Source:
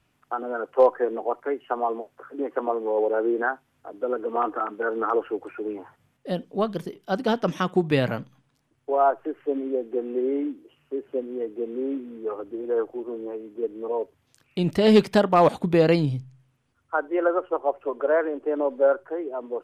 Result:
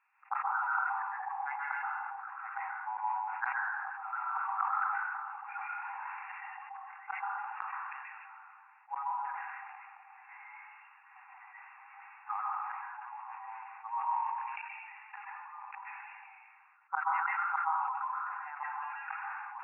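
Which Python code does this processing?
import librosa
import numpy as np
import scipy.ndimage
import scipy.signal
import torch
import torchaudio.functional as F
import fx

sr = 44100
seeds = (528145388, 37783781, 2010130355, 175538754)

y = fx.zero_step(x, sr, step_db=-43.5, at=(5.77, 6.3))
y = fx.rider(y, sr, range_db=3, speed_s=2.0)
y = fx.leveller(y, sr, passes=5, at=(18.82, 19.32))
y = fx.gate_flip(y, sr, shuts_db=-15.0, range_db=-27)
y = fx.brickwall_bandpass(y, sr, low_hz=760.0, high_hz=2800.0)
y = fx.air_absorb(y, sr, metres=350.0)
y = fx.rev_plate(y, sr, seeds[0], rt60_s=0.94, hf_ratio=0.95, predelay_ms=115, drr_db=-4.5)
y = fx.sustainer(y, sr, db_per_s=24.0)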